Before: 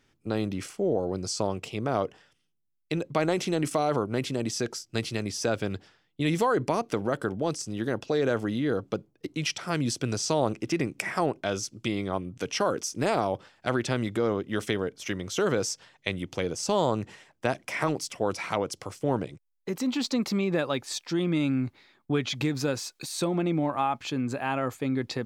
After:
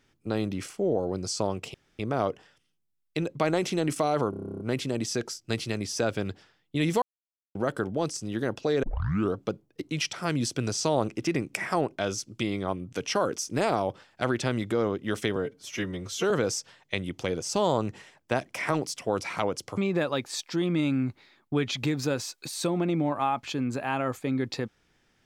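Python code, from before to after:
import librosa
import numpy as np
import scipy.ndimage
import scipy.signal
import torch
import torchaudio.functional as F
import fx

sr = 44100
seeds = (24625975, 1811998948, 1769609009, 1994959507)

y = fx.edit(x, sr, fx.insert_room_tone(at_s=1.74, length_s=0.25),
    fx.stutter(start_s=4.05, slice_s=0.03, count=11),
    fx.silence(start_s=6.47, length_s=0.53),
    fx.tape_start(start_s=8.28, length_s=0.51),
    fx.stretch_span(start_s=14.81, length_s=0.63, factor=1.5),
    fx.cut(start_s=18.91, length_s=1.44), tone=tone)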